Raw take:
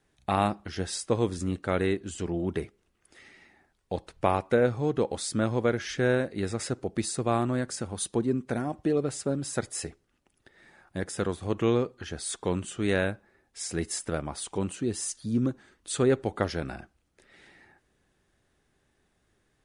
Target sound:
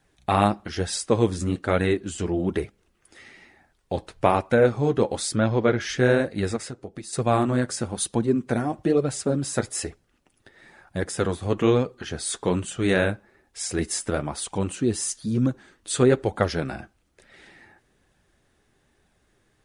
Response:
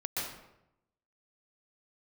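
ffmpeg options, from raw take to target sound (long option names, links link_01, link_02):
-filter_complex "[0:a]asplit=3[link_01][link_02][link_03];[link_01]afade=type=out:start_time=5.35:duration=0.02[link_04];[link_02]lowpass=frequency=5400:width=0.5412,lowpass=frequency=5400:width=1.3066,afade=type=in:start_time=5.35:duration=0.02,afade=type=out:start_time=5.79:duration=0.02[link_05];[link_03]afade=type=in:start_time=5.79:duration=0.02[link_06];[link_04][link_05][link_06]amix=inputs=3:normalize=0,asettb=1/sr,asplit=3[link_07][link_08][link_09];[link_07]atrim=end=6.564[link_10];[link_08]atrim=start=6.56:end=7.13,asetpts=PTS-STARTPTS,afade=type=in:duration=0.004:curve=qsin,afade=type=out:start_time=0.566:duration=0.004:curve=qsin,acompressor=threshold=-38dB:ratio=8[link_11];[link_09]atrim=start=7.126[link_12];[link_10][link_11]acrossfade=duration=0.004:curve1=hsin:curve2=qsin[link_13];[link_13][link_12]acrossfade=duration=0.004:curve1=qsin:curve2=hsin,flanger=delay=1.2:depth=8.4:regen=-42:speed=1.1:shape=sinusoidal,volume=9dB"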